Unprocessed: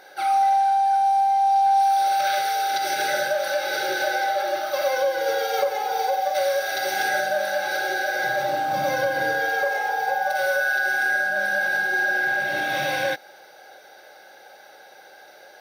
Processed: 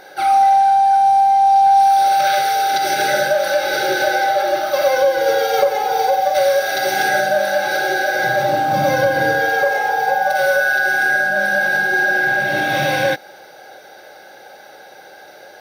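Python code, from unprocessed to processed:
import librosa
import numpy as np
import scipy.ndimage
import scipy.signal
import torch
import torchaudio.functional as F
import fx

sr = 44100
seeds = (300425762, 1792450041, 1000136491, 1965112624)

y = fx.low_shelf(x, sr, hz=310.0, db=9.5)
y = y * librosa.db_to_amplitude(5.5)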